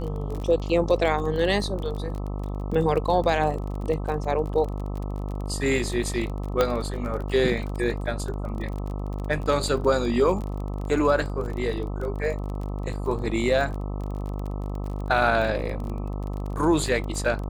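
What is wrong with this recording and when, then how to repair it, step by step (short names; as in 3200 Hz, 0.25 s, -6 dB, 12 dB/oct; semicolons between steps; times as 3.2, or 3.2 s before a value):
buzz 50 Hz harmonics 26 -30 dBFS
crackle 27/s -31 dBFS
6.61 pop -8 dBFS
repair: de-click; de-hum 50 Hz, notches 26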